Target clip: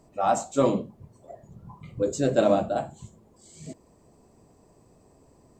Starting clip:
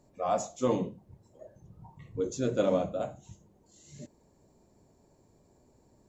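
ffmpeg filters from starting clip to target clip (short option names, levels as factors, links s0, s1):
-af "asetrate=48000,aresample=44100,volume=2"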